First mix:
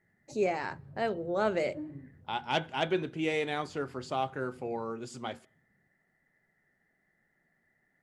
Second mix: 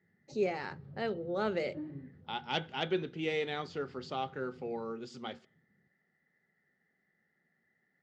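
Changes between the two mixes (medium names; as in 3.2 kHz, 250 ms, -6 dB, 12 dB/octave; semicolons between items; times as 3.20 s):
background +5.0 dB; master: add cabinet simulation 120–5400 Hz, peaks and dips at 120 Hz -6 dB, 300 Hz -6 dB, 650 Hz -8 dB, 1 kHz -8 dB, 1.6 kHz -4 dB, 2.4 kHz -4 dB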